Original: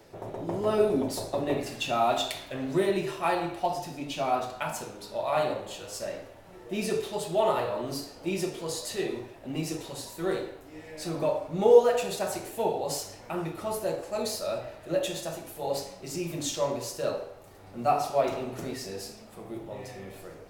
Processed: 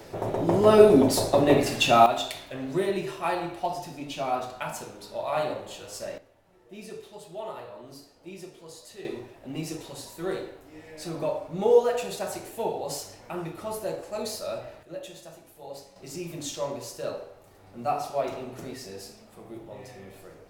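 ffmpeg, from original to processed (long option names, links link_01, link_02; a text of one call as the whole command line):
ffmpeg -i in.wav -af "asetnsamples=nb_out_samples=441:pad=0,asendcmd='2.06 volume volume -1dB;6.18 volume volume -12dB;9.05 volume volume -1.5dB;14.83 volume volume -10.5dB;15.96 volume volume -3dB',volume=9dB" out.wav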